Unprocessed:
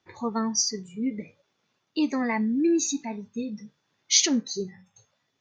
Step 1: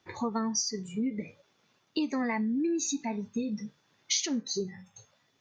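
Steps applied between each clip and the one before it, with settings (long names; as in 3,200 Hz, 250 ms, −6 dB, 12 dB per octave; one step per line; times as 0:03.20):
downward compressor 5 to 1, threshold −33 dBFS, peak gain reduction 16 dB
level +4.5 dB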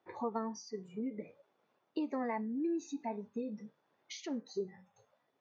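resonant band-pass 610 Hz, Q 1
level −1 dB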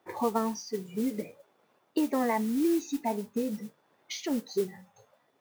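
noise that follows the level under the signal 19 dB
level +8.5 dB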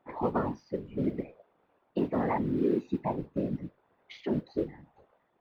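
high-frequency loss of the air 430 metres
random phases in short frames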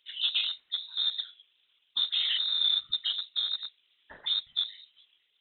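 loose part that buzzes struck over −34 dBFS, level −39 dBFS
voice inversion scrambler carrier 3,900 Hz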